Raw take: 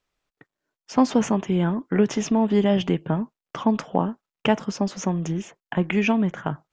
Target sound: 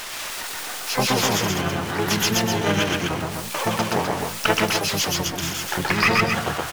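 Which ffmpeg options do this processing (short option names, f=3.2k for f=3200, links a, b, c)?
-filter_complex "[0:a]aeval=exprs='val(0)+0.5*0.0266*sgn(val(0))':c=same,tiltshelf=f=680:g=-9.5,aeval=exprs='0.841*(cos(1*acos(clip(val(0)/0.841,-1,1)))-cos(1*PI/2))+0.0841*(cos(2*acos(clip(val(0)/0.841,-1,1)))-cos(2*PI/2))+0.0133*(cos(5*acos(clip(val(0)/0.841,-1,1)))-cos(5*PI/2))':c=same,asplit=2[a][b];[b]aecho=0:1:125.4|253.6:0.891|0.562[c];[a][c]amix=inputs=2:normalize=0,asplit=4[d][e][f][g];[e]asetrate=22050,aresample=44100,atempo=2,volume=-1dB[h];[f]asetrate=35002,aresample=44100,atempo=1.25992,volume=-2dB[i];[g]asetrate=88200,aresample=44100,atempo=0.5,volume=-7dB[j];[d][h][i][j]amix=inputs=4:normalize=0,volume=-6dB"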